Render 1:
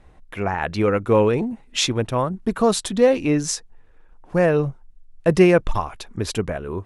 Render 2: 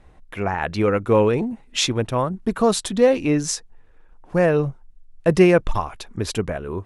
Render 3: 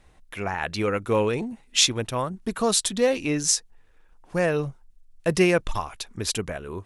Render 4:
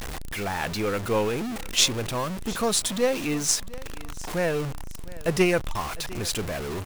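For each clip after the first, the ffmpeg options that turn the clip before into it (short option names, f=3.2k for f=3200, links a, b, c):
-af anull
-af "highshelf=f=2.3k:g=12,volume=-6.5dB"
-af "aeval=exprs='val(0)+0.5*0.119*sgn(val(0))':c=same,aeval=exprs='0.944*(cos(1*acos(clip(val(0)/0.944,-1,1)))-cos(1*PI/2))+0.0376*(cos(6*acos(clip(val(0)/0.944,-1,1)))-cos(6*PI/2))+0.0841*(cos(7*acos(clip(val(0)/0.944,-1,1)))-cos(7*PI/2))':c=same,aecho=1:1:704|1408:0.106|0.0286,volume=-1dB"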